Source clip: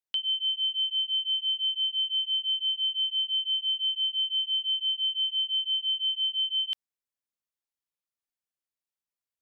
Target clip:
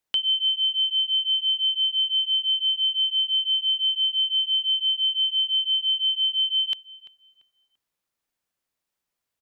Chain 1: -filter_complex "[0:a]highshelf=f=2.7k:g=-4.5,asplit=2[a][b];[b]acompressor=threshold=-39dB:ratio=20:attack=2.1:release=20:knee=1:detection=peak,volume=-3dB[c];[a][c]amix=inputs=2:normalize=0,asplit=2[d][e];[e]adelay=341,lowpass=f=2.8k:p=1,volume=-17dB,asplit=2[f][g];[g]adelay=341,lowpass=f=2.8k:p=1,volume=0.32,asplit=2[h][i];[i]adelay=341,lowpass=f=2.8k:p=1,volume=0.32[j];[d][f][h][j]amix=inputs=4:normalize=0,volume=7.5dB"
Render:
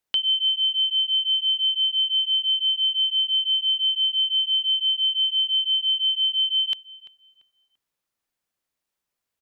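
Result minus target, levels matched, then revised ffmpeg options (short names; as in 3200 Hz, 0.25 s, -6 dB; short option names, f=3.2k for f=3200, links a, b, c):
compressor: peak gain reduction -8.5 dB
-filter_complex "[0:a]highshelf=f=2.7k:g=-4.5,asplit=2[a][b];[b]acompressor=threshold=-48dB:ratio=20:attack=2.1:release=20:knee=1:detection=peak,volume=-3dB[c];[a][c]amix=inputs=2:normalize=0,asplit=2[d][e];[e]adelay=341,lowpass=f=2.8k:p=1,volume=-17dB,asplit=2[f][g];[g]adelay=341,lowpass=f=2.8k:p=1,volume=0.32,asplit=2[h][i];[i]adelay=341,lowpass=f=2.8k:p=1,volume=0.32[j];[d][f][h][j]amix=inputs=4:normalize=0,volume=7.5dB"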